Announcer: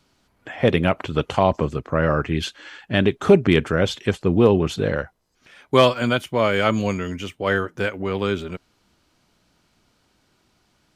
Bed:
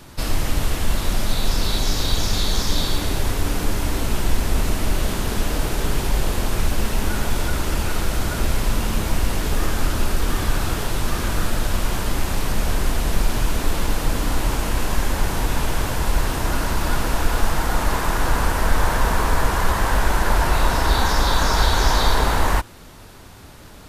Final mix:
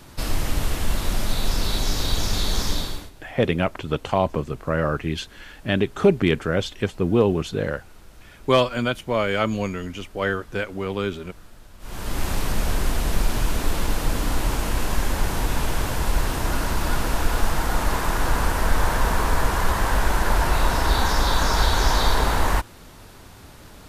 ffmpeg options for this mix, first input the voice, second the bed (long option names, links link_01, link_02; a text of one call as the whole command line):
ffmpeg -i stem1.wav -i stem2.wav -filter_complex "[0:a]adelay=2750,volume=-3dB[link_01];[1:a]volume=21dB,afade=type=out:start_time=2.67:duration=0.44:silence=0.0707946,afade=type=in:start_time=11.79:duration=0.47:silence=0.0668344[link_02];[link_01][link_02]amix=inputs=2:normalize=0" out.wav